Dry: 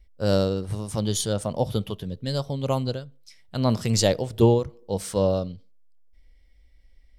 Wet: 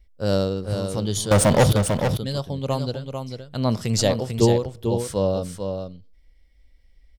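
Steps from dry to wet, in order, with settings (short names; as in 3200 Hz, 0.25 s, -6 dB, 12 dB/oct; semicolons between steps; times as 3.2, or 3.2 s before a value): 1.31–1.73 sample leveller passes 5; on a send: echo 0.445 s -6.5 dB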